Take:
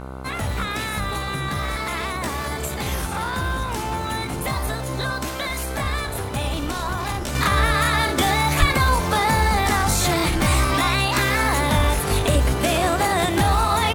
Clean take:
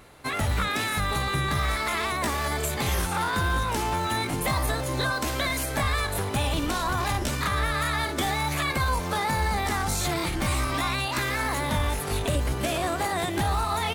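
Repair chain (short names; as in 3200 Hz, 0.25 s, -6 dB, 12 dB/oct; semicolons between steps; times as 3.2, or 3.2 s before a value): de-hum 65.3 Hz, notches 23; 8.59–8.71 HPF 140 Hz 24 dB/oct; inverse comb 90 ms -18.5 dB; 7.35 gain correction -7 dB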